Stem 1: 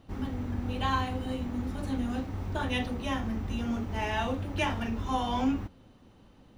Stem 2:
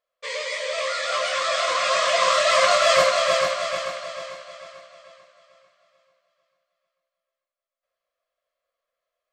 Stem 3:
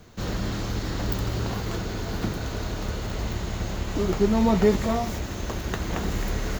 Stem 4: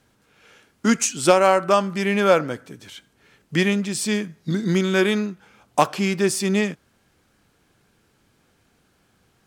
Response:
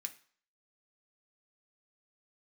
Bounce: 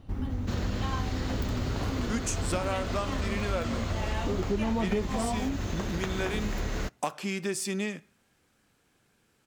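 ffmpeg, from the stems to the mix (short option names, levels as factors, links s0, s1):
-filter_complex "[0:a]lowshelf=f=140:g=10.5,volume=1.06[s0];[1:a]adelay=750,volume=0.158[s1];[2:a]highshelf=f=10000:g=-10.5,adelay=300,volume=1.33,asplit=2[s2][s3];[s3]volume=0.224[s4];[3:a]adelay=1250,volume=0.447,asplit=2[s5][s6];[s6]volume=0.447[s7];[4:a]atrim=start_sample=2205[s8];[s4][s7]amix=inputs=2:normalize=0[s9];[s9][s8]afir=irnorm=-1:irlink=0[s10];[s0][s1][s2][s5][s10]amix=inputs=5:normalize=0,acompressor=threshold=0.0355:ratio=3"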